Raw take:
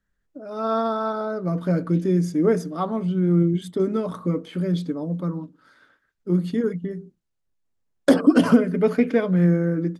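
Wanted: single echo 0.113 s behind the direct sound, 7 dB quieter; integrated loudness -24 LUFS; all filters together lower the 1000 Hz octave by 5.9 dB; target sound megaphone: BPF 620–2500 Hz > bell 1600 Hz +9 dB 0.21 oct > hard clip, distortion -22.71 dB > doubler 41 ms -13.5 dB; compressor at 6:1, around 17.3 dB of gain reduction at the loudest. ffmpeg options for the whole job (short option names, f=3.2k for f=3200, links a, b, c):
-filter_complex "[0:a]equalizer=f=1k:t=o:g=-8.5,acompressor=threshold=-30dB:ratio=6,highpass=620,lowpass=2.5k,equalizer=f=1.6k:t=o:w=0.21:g=9,aecho=1:1:113:0.447,asoftclip=type=hard:threshold=-26.5dB,asplit=2[a][b];[b]adelay=41,volume=-13.5dB[c];[a][c]amix=inputs=2:normalize=0,volume=18dB"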